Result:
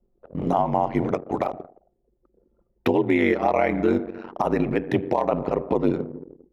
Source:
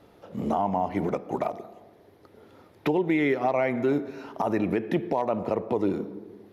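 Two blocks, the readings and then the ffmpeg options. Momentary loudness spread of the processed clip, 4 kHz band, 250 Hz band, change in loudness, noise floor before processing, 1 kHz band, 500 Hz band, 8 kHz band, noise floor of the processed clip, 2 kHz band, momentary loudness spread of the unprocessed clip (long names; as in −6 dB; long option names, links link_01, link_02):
10 LU, +3.5 dB, +3.0 dB, +3.5 dB, −57 dBFS, +4.0 dB, +3.5 dB, can't be measured, −70 dBFS, +3.5 dB, 10 LU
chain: -af "aeval=exprs='val(0)*sin(2*PI*46*n/s)':channel_layout=same,anlmdn=0.1,volume=6.5dB"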